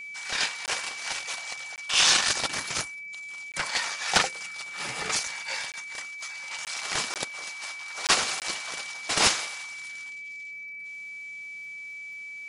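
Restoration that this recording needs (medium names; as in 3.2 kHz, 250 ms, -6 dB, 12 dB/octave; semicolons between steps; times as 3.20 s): clip repair -9.5 dBFS; de-click; band-stop 2.3 kHz, Q 30; interpolate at 0.66/1.76/3.52/5.72/6.65/7.14/8.07/8.40 s, 18 ms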